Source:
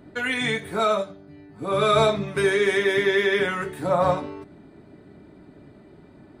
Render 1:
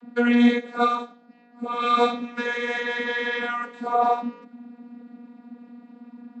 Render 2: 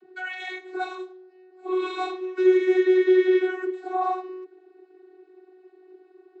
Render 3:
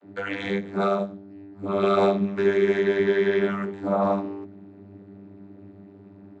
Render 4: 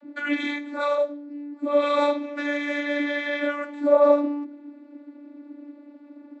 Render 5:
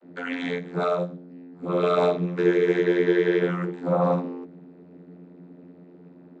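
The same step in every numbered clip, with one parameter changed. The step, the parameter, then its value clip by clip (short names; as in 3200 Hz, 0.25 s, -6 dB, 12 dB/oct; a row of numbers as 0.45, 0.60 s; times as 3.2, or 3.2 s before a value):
vocoder, frequency: 240, 370, 99, 290, 88 Hz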